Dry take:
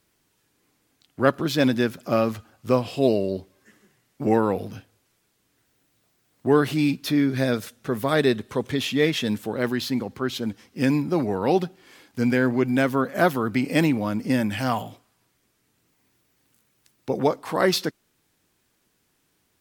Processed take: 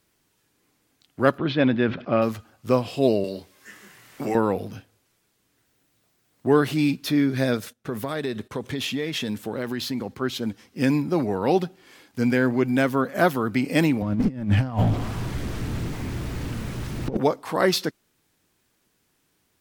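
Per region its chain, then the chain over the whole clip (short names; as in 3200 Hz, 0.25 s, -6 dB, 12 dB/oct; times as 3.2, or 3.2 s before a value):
1.38–2.22 inverse Chebyshev low-pass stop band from 9600 Hz, stop band 60 dB + sustainer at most 130 dB/s
3.24–4.35 tilt shelf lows -6.5 dB, about 750 Hz + doubler 25 ms -6.5 dB + three-band squash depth 70%
7.57–10.16 gate -49 dBFS, range -16 dB + compressor, threshold -23 dBFS + mismatched tape noise reduction decoder only
14.02–17.17 zero-crossing step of -31.5 dBFS + negative-ratio compressor -28 dBFS, ratio -0.5 + RIAA curve playback
whole clip: dry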